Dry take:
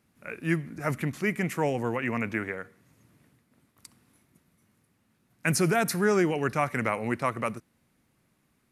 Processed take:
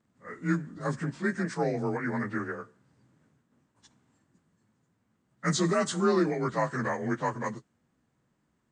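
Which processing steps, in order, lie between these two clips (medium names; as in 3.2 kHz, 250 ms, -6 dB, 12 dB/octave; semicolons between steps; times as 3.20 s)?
frequency axis rescaled in octaves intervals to 90%; tape noise reduction on one side only decoder only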